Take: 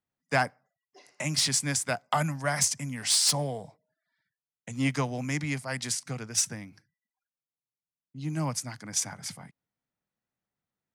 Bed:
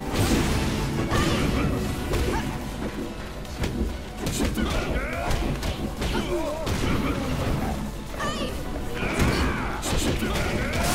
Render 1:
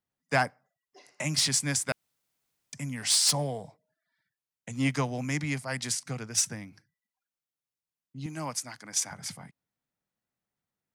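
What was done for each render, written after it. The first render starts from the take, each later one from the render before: 1.92–2.73 s: room tone; 8.26–9.11 s: high-pass 440 Hz 6 dB/octave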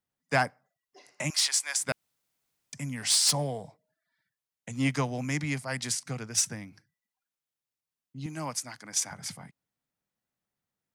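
1.30–1.81 s: high-pass 720 Hz 24 dB/octave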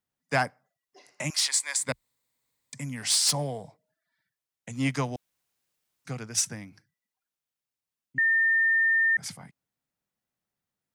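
1.49–2.81 s: rippled EQ curve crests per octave 1, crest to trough 7 dB; 5.16–6.05 s: room tone; 8.18–9.17 s: bleep 1.81 kHz -19.5 dBFS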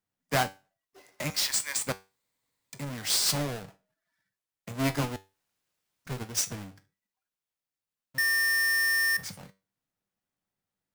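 square wave that keeps the level; feedback comb 96 Hz, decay 0.28 s, harmonics all, mix 60%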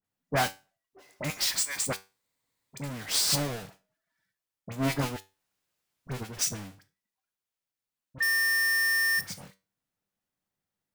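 phase dispersion highs, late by 45 ms, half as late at 1.7 kHz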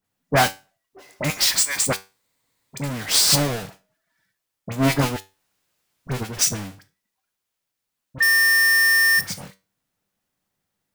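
trim +9 dB

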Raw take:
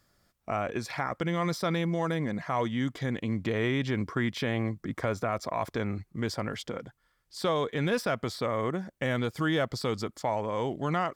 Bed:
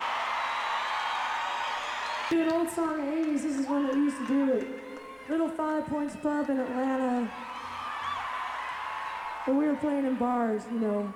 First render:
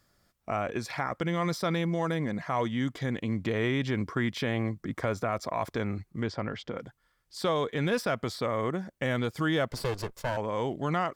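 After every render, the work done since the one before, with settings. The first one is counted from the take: 6.23–6.77 s: distance through air 140 m; 9.70–10.37 s: comb filter that takes the minimum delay 1.9 ms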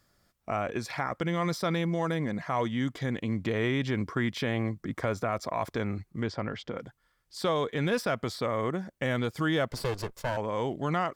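no audible change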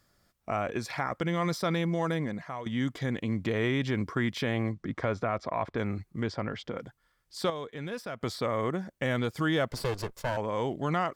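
2.16–2.66 s: fade out, to -14 dB; 4.72–5.77 s: low-pass 6.1 kHz -> 2.7 kHz; 7.50–8.21 s: gain -9 dB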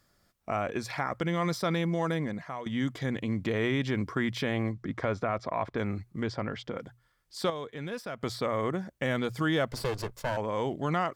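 hum notches 60/120 Hz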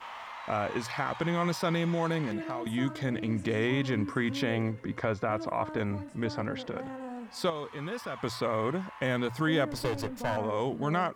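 add bed -12 dB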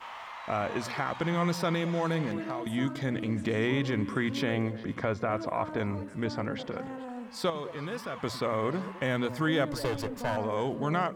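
repeats whose band climbs or falls 105 ms, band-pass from 190 Hz, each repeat 1.4 oct, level -9 dB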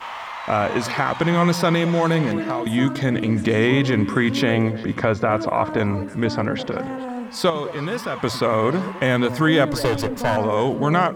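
trim +10.5 dB

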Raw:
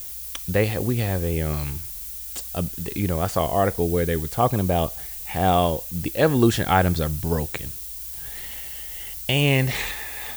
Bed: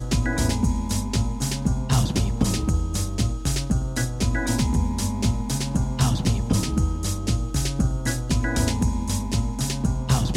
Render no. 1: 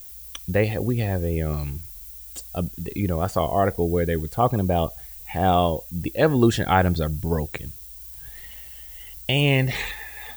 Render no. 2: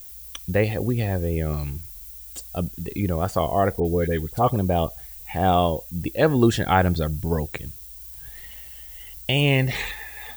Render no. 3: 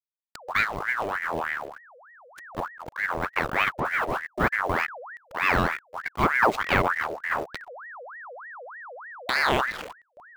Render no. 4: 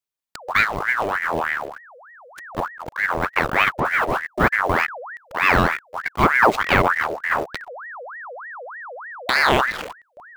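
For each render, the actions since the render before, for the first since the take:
noise reduction 9 dB, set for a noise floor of -35 dBFS
3.80–4.56 s: phase dispersion highs, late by 50 ms, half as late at 1.8 kHz
hysteresis with a dead band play -19.5 dBFS; ring modulator with a swept carrier 1.2 kHz, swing 60%, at 3.3 Hz
trim +6 dB; peak limiter -1 dBFS, peak gain reduction 1.5 dB

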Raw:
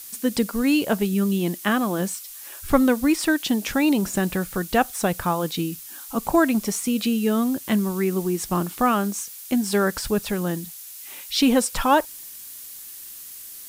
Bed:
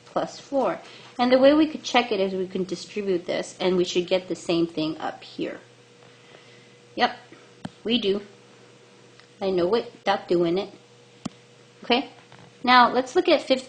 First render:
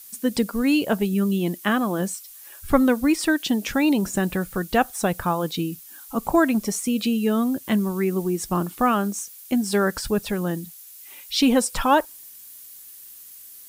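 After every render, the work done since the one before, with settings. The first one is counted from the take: noise reduction 7 dB, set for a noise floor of -40 dBFS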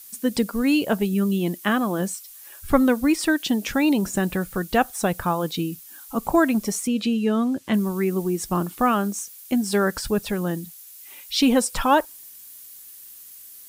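6.87–7.74 s: distance through air 53 m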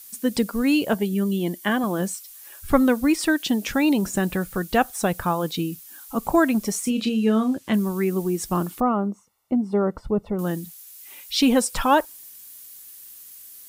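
0.94–1.84 s: comb of notches 1.3 kHz; 6.80–7.56 s: doubling 32 ms -7.5 dB; 8.80–10.39 s: Savitzky-Golay filter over 65 samples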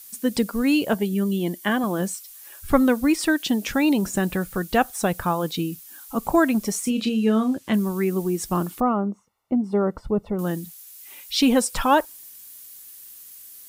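8.93–9.64 s: treble shelf 4.4 kHz -10.5 dB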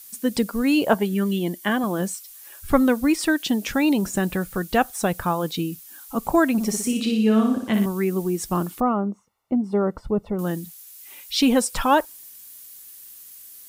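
0.76–1.38 s: peaking EQ 680 Hz -> 2.3 kHz +8.5 dB 1.5 oct; 6.52–7.86 s: flutter echo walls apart 10.2 m, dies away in 0.62 s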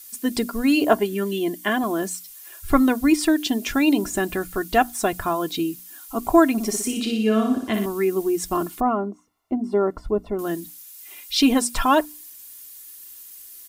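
hum notches 60/120/180/240/300 Hz; comb 2.9 ms, depth 59%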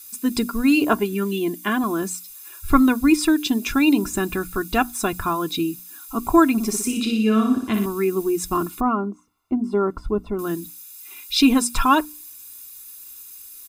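comb 0.8 ms, depth 57%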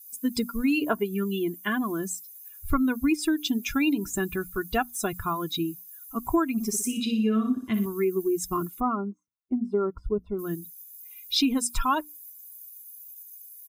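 expander on every frequency bin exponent 1.5; compression 4:1, threshold -21 dBFS, peak gain reduction 10 dB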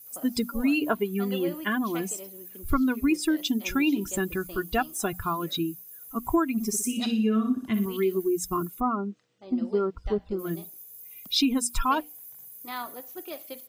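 add bed -20.5 dB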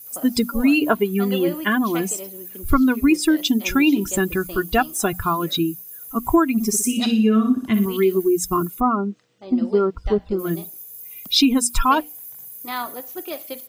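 trim +7.5 dB

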